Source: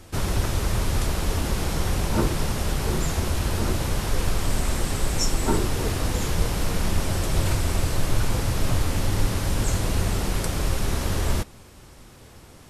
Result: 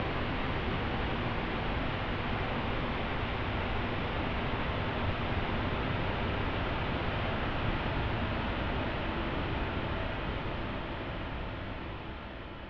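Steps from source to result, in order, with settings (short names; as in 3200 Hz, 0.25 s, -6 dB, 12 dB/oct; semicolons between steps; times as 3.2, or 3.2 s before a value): Paulstretch 11×, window 1.00 s, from 10.49; mistuned SSB -300 Hz 220–3500 Hz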